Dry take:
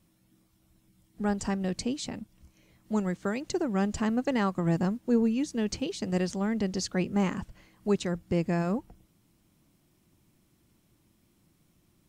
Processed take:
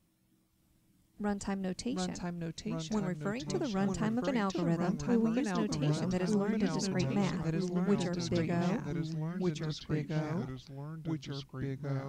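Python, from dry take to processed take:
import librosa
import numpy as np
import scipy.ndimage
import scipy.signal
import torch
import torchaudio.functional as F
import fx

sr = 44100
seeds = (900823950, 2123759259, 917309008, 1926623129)

y = fx.echo_pitch(x, sr, ms=571, semitones=-2, count=3, db_per_echo=-3.0)
y = y * 10.0 ** (-5.5 / 20.0)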